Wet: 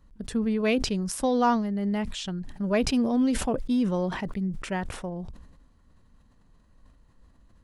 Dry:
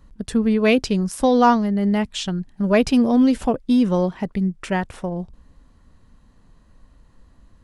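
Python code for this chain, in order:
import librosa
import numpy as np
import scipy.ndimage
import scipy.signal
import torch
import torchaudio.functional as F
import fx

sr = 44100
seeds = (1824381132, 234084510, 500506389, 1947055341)

y = fx.sustainer(x, sr, db_per_s=57.0)
y = y * 10.0 ** (-8.0 / 20.0)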